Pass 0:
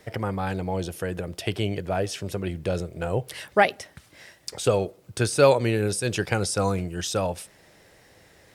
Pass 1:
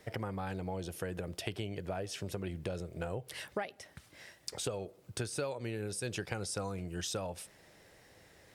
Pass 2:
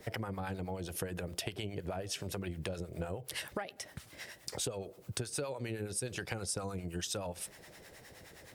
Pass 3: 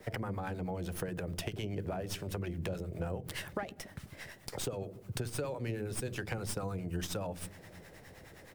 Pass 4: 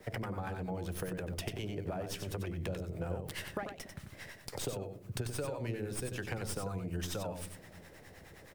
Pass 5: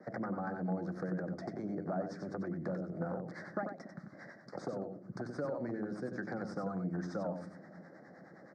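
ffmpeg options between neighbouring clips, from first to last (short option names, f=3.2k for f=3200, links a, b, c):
-af "acompressor=threshold=-28dB:ratio=12,volume=-5.5dB"
-filter_complex "[0:a]acrossover=split=660[a][b];[a]aeval=exprs='val(0)*(1-0.7/2+0.7/2*cos(2*PI*9.6*n/s))':c=same[c];[b]aeval=exprs='val(0)*(1-0.7/2-0.7/2*cos(2*PI*9.6*n/s))':c=same[d];[c][d]amix=inputs=2:normalize=0,acompressor=threshold=-45dB:ratio=3,highshelf=f=11k:g=6,volume=8.5dB"
-filter_complex "[0:a]acrossover=split=320|810|2600[a][b][c][d];[a]aecho=1:1:60|150|285|487.5|791.2:0.631|0.398|0.251|0.158|0.1[e];[d]aeval=exprs='max(val(0),0)':c=same[f];[e][b][c][f]amix=inputs=4:normalize=0,volume=1dB"
-af "aecho=1:1:93:0.447,volume=-1.5dB"
-af "aeval=exprs='0.0355*(abs(mod(val(0)/0.0355+3,4)-2)-1)':c=same,asuperstop=centerf=2900:order=4:qfactor=0.79,highpass=f=180:w=0.5412,highpass=f=180:w=1.3066,equalizer=f=180:t=q:w=4:g=3,equalizer=f=430:t=q:w=4:g=-9,equalizer=f=960:t=q:w=4:g=-9,equalizer=f=2.6k:t=q:w=4:g=-9,equalizer=f=3.7k:t=q:w=4:g=-8,lowpass=f=3.8k:w=0.5412,lowpass=f=3.8k:w=1.3066,volume=5dB"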